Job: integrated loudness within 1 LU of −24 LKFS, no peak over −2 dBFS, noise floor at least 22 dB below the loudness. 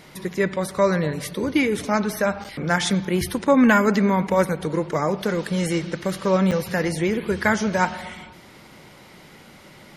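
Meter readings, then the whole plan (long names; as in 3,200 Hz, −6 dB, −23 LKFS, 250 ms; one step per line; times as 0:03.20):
number of dropouts 2; longest dropout 7.1 ms; integrated loudness −22.0 LKFS; sample peak −5.5 dBFS; target loudness −24.0 LKFS
→ repair the gap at 0:02.44/0:06.51, 7.1 ms
level −2 dB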